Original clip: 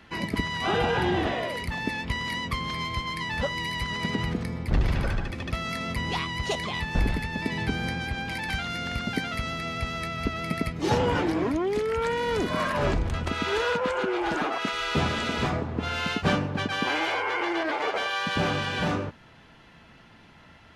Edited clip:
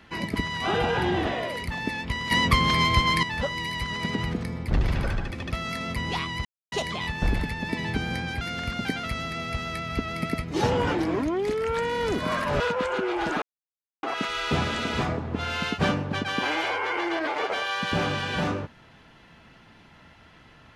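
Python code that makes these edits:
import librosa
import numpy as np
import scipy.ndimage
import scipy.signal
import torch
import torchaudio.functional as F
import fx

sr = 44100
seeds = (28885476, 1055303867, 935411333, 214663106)

y = fx.edit(x, sr, fx.clip_gain(start_s=2.31, length_s=0.92, db=9.5),
    fx.insert_silence(at_s=6.45, length_s=0.27),
    fx.cut(start_s=8.14, length_s=0.55),
    fx.cut(start_s=12.88, length_s=0.77),
    fx.insert_silence(at_s=14.47, length_s=0.61), tone=tone)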